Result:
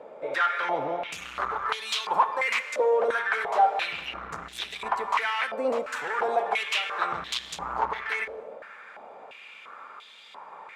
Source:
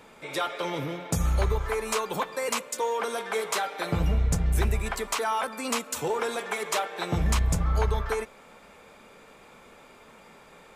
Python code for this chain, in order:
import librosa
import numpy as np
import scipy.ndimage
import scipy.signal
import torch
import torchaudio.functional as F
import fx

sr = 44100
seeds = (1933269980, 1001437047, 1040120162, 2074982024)

y = fx.cheby_harmonics(x, sr, harmonics=(5,), levels_db=(-11,), full_scale_db=-15.5)
y = fx.rev_gated(y, sr, seeds[0], gate_ms=320, shape='flat', drr_db=12.0)
y = fx.filter_held_bandpass(y, sr, hz=2.9, low_hz=570.0, high_hz=3500.0)
y = y * librosa.db_to_amplitude(8.0)